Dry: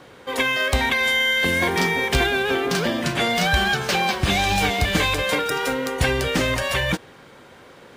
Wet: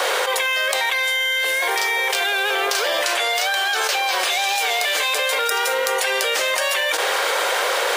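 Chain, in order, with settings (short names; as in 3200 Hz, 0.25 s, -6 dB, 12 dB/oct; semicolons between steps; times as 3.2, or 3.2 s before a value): steep high-pass 470 Hz 36 dB/oct; high shelf 4400 Hz +7 dB; fast leveller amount 100%; gain -3 dB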